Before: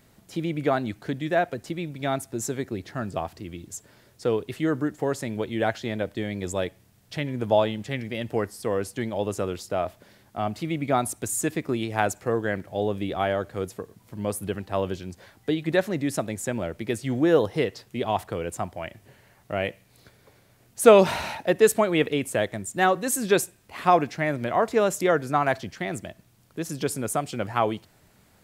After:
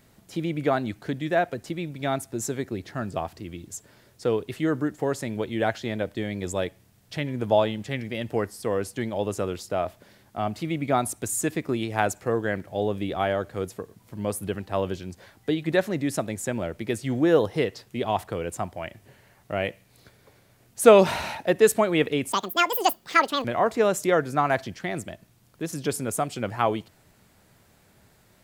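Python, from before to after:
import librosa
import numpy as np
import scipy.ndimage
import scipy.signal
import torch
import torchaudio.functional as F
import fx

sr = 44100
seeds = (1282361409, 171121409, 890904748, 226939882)

y = fx.edit(x, sr, fx.speed_span(start_s=22.32, length_s=2.09, speed=1.86), tone=tone)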